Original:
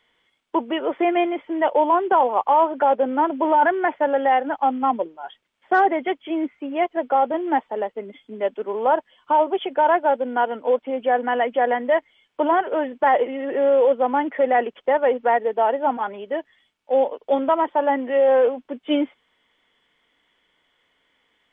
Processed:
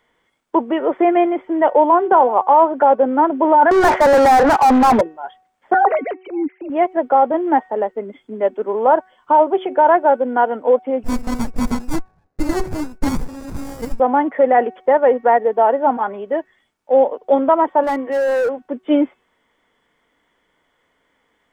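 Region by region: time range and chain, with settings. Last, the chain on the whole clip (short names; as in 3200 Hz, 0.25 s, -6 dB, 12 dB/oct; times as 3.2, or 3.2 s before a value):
3.71–5.01 HPF 560 Hz 6 dB/oct + overdrive pedal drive 38 dB, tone 2100 Hz, clips at -10 dBFS
5.74–6.7 sine-wave speech + transient shaper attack -11 dB, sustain +5 dB
11.03–14 HPF 320 Hz + inverted band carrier 3000 Hz + running maximum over 33 samples
17.83–18.62 bell 660 Hz -3 dB 0.78 oct + notch 240 Hz, Q 5.1 + overloaded stage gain 21 dB
whole clip: bell 3000 Hz -11 dB 1.1 oct; de-hum 373.3 Hz, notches 7; gain +6 dB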